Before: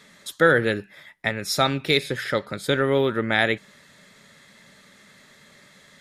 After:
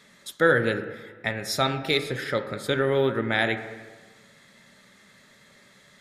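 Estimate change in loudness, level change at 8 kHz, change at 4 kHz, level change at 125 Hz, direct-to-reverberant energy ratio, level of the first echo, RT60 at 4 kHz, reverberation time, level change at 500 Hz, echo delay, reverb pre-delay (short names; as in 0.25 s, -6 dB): -2.5 dB, -3.5 dB, -3.5 dB, -2.0 dB, 7.5 dB, none, 1.3 s, 1.4 s, -2.0 dB, none, 5 ms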